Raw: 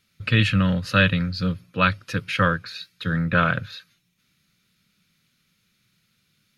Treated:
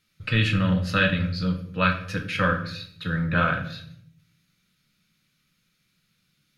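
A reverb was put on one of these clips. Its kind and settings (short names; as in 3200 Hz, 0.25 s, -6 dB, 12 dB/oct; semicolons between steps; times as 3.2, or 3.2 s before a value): shoebox room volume 110 m³, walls mixed, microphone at 0.56 m; gain -4 dB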